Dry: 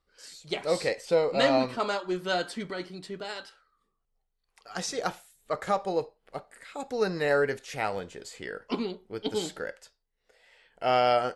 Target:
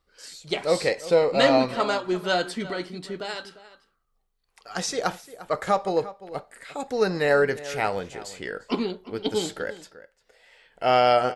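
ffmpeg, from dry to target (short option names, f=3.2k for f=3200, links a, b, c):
-filter_complex "[0:a]asplit=2[a][b];[b]adelay=349.9,volume=-16dB,highshelf=f=4k:g=-7.87[c];[a][c]amix=inputs=2:normalize=0,volume=4.5dB"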